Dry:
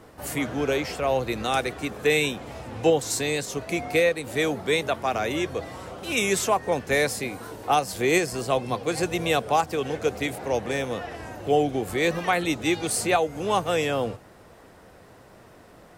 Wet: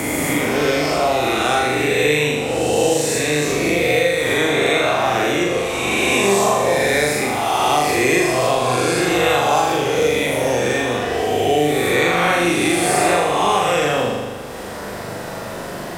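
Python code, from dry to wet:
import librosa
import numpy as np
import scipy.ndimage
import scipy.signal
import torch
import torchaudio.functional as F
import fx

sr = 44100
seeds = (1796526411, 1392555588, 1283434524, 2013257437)

p1 = fx.spec_swells(x, sr, rise_s=1.67)
p2 = p1 + fx.room_flutter(p1, sr, wall_m=6.9, rt60_s=0.92, dry=0)
y = fx.band_squash(p2, sr, depth_pct=70)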